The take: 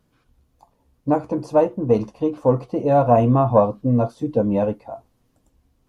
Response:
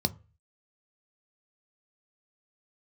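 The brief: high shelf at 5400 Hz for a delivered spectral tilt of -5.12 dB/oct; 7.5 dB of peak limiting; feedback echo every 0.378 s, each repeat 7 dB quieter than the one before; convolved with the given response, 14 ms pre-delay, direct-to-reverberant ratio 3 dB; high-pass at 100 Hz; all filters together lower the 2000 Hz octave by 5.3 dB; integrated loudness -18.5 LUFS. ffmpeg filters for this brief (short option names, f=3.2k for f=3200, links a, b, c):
-filter_complex "[0:a]highpass=100,equalizer=f=2k:t=o:g=-9,highshelf=f=5.4k:g=6,alimiter=limit=-10dB:level=0:latency=1,aecho=1:1:378|756|1134|1512|1890:0.447|0.201|0.0905|0.0407|0.0183,asplit=2[a][b];[1:a]atrim=start_sample=2205,adelay=14[c];[b][c]afir=irnorm=-1:irlink=0,volume=-9.5dB[d];[a][d]amix=inputs=2:normalize=0,volume=-2dB"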